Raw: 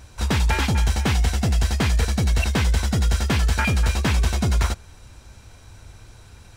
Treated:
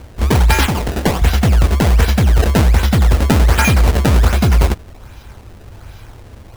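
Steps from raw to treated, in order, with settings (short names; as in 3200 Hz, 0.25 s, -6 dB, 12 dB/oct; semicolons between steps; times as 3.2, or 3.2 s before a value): 0.66–1.22 HPF 200 Hz 6 dB/oct; 3.36–4.34 resonant high shelf 7600 Hz +7 dB, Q 3; decimation with a swept rate 23×, swing 160% 1.3 Hz; gain +8.5 dB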